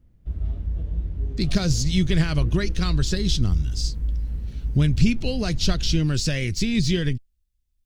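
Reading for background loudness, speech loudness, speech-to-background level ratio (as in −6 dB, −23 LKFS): −30.0 LKFS, −24.0 LKFS, 6.0 dB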